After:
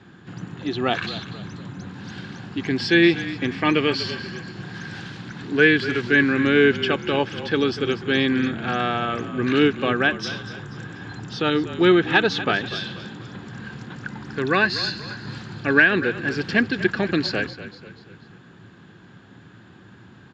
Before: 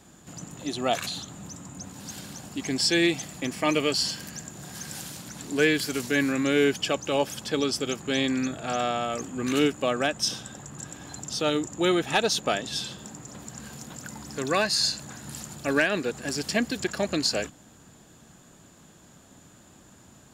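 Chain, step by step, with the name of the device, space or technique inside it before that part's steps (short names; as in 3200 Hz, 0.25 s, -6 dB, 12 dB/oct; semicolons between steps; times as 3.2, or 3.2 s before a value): frequency-shifting delay pedal into a guitar cabinet (frequency-shifting echo 0.242 s, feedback 44%, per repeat -36 Hz, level -14 dB; speaker cabinet 86–4000 Hz, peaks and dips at 110 Hz +10 dB, 180 Hz +4 dB, 370 Hz +5 dB, 620 Hz -8 dB, 1600 Hz +8 dB); gain +4 dB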